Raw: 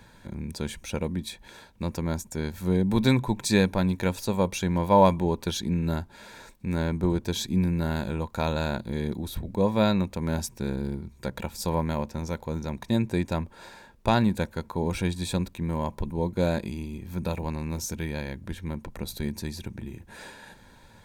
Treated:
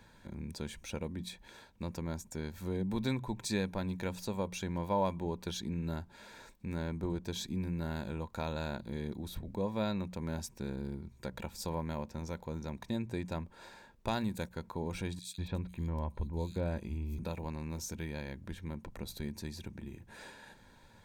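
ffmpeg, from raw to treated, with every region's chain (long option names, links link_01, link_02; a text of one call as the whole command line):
ffmpeg -i in.wav -filter_complex "[0:a]asettb=1/sr,asplit=3[link_01][link_02][link_03];[link_01]atrim=end=14.084[link_04];[link_02]atrim=start=14.08:end=14.51,asetpts=PTS-STARTPTS,afade=type=in:duration=0.004:curve=qsin,afade=type=out:start_time=0.426:duration=0.004:curve=qsin,agate=range=-12dB:threshold=-38dB:ratio=16:release=100:detection=peak,aemphasis=mode=production:type=cd,acompressor=mode=upward:threshold=-27dB:ratio=2.5:attack=3.2:release=140:knee=2.83:detection=peak[link_05];[link_03]atrim=start=14.506[link_06];[link_04][link_05]acrossfade=duration=0.004:curve1=hsin:curve2=qsin[link_07];[link_07][link_06]acrossfade=duration=0.004:curve1=qsin:curve2=hsin,asettb=1/sr,asplit=3[link_08][link_09][link_10];[link_08]atrim=end=15.194[link_11];[link_09]atrim=start=15.19:end=17.19,asetpts=PTS-STARTPTS,afade=type=in:duration=0.004:curve=qsin,afade=type=out:start_time=1.996:duration=0.004:curve=qsin,equalizer=frequency=70:width_type=o:width=0.65:gain=13,acrossover=split=3400[link_12][link_13];[link_12]adelay=190[link_14];[link_14][link_13]amix=inputs=2:normalize=0,atrim=end_sample=88200[link_15];[link_10]atrim=start=17.186[link_16];[link_11][link_15]acrossfade=duration=0.004:curve1=hsin:curve2=qsin[link_17];[link_17][link_16]acrossfade=duration=0.004:curve1=qsin:curve2=hsin,equalizer=frequency=11000:width=1.9:gain=-4,bandreject=frequency=60:width_type=h:width=6,bandreject=frequency=120:width_type=h:width=6,bandreject=frequency=180:width_type=h:width=6,acompressor=threshold=-32dB:ratio=1.5,volume=-6.5dB" out.wav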